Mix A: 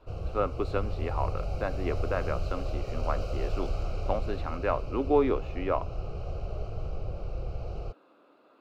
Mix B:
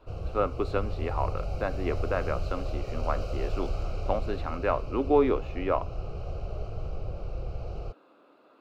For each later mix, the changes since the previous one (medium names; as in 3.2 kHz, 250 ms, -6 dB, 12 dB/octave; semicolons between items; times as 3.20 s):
reverb: on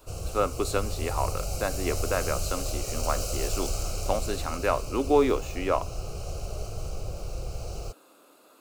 master: remove distance through air 350 m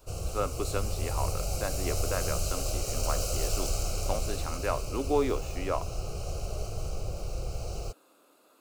speech -5.5 dB